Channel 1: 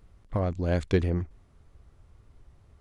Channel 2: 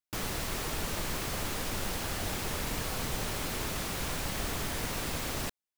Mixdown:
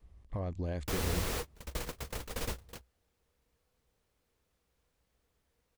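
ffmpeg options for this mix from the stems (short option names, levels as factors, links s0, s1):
-filter_complex "[0:a]bandreject=f=1400:w=6.4,adynamicequalizer=threshold=0.0112:dfrequency=100:dqfactor=1.1:tfrequency=100:tqfactor=1.1:attack=5:release=100:ratio=0.375:range=2:mode=cutabove:tftype=bell,alimiter=limit=0.0668:level=0:latency=1:release=161,volume=0.501,asplit=2[s0][s1];[1:a]equalizer=f=480:t=o:w=0.23:g=9.5,adelay=750,volume=0.841[s2];[s1]apad=whole_len=287853[s3];[s2][s3]sidechaingate=range=0.00631:threshold=0.00141:ratio=16:detection=peak[s4];[s0][s4]amix=inputs=2:normalize=0,equalizer=f=62:w=2.8:g=11.5"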